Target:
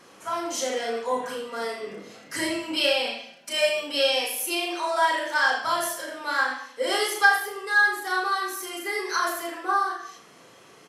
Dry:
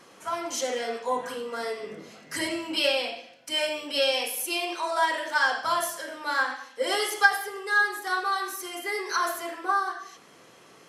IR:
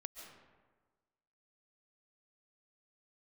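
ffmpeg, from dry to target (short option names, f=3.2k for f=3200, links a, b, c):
-filter_complex "[0:a]asettb=1/sr,asplit=3[a][b][c];[a]atrim=end=3.054[d];[b]atrim=start=3.05:end=3.8,asetpts=PTS-STARTPTS,afade=t=in:d=0.004:c=qsin,afade=t=out:st=0.746:d=0.004:c=qsin,aecho=1:1:5:0.81,atrim=end_sample=33075[e];[c]atrim=start=3.796[f];[d][e]acrossfade=d=0.004:c1=hsin:c2=qsin[g];[g][f]acrossfade=d=0.004:c1=qsin:c2=hsin,aecho=1:1:34.99|78.72:0.631|0.316"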